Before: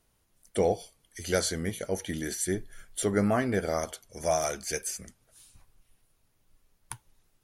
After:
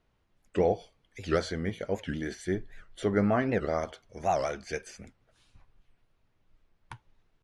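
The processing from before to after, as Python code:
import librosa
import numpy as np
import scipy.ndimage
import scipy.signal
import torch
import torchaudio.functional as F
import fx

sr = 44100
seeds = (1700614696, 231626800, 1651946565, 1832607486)

y = scipy.signal.sosfilt(scipy.signal.butter(2, 3100.0, 'lowpass', fs=sr, output='sos'), x)
y = fx.record_warp(y, sr, rpm=78.0, depth_cents=250.0)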